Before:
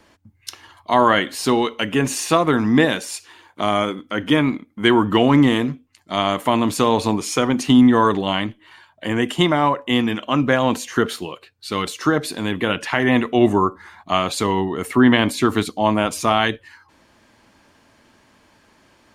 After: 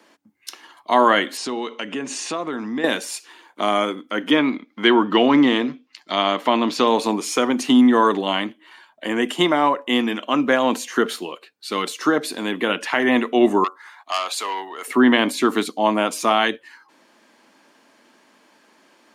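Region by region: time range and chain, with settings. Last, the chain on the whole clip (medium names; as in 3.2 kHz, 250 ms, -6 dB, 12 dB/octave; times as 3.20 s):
1.37–2.84 s: low-pass 8.1 kHz 24 dB/octave + bass shelf 71 Hz +11 dB + compression 2.5:1, threshold -26 dBFS
4.31–6.88 s: resonant high shelf 6.6 kHz -11.5 dB, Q 1.5 + tape noise reduction on one side only encoder only
13.64–14.88 s: high-pass 800 Hz + transformer saturation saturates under 2.9 kHz
whole clip: de-esser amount 40%; high-pass 220 Hz 24 dB/octave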